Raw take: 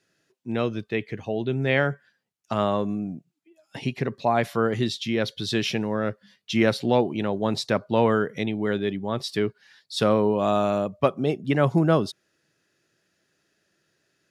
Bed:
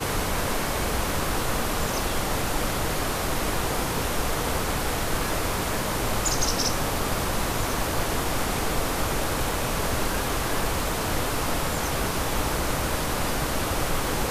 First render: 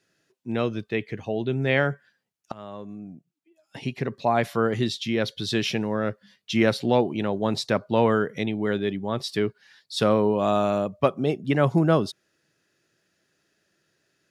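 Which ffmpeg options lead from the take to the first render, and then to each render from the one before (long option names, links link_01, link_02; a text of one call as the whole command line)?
ffmpeg -i in.wav -filter_complex "[0:a]asplit=2[link_01][link_02];[link_01]atrim=end=2.52,asetpts=PTS-STARTPTS,afade=type=out:start_time=2.516:duration=0.004:curve=hsin:silence=0.0841395[link_03];[link_02]atrim=start=2.52,asetpts=PTS-STARTPTS,afade=type=in:duration=1.8:silence=0.0841395[link_04];[link_03][link_04]concat=n=2:v=0:a=1" out.wav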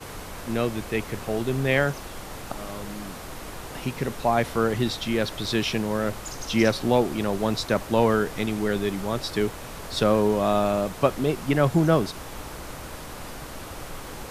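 ffmpeg -i in.wav -i bed.wav -filter_complex "[1:a]volume=-11.5dB[link_01];[0:a][link_01]amix=inputs=2:normalize=0" out.wav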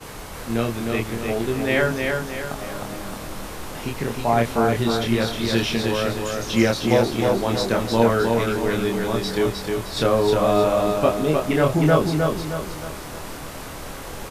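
ffmpeg -i in.wav -filter_complex "[0:a]asplit=2[link_01][link_02];[link_02]adelay=26,volume=-3dB[link_03];[link_01][link_03]amix=inputs=2:normalize=0,aecho=1:1:310|620|930|1240|1550:0.631|0.271|0.117|0.0502|0.0216" out.wav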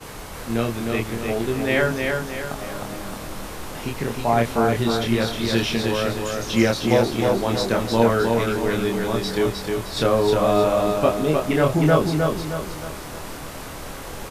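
ffmpeg -i in.wav -af anull out.wav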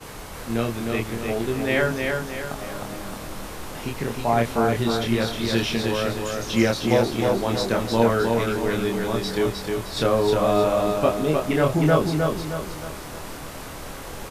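ffmpeg -i in.wav -af "volume=-1.5dB" out.wav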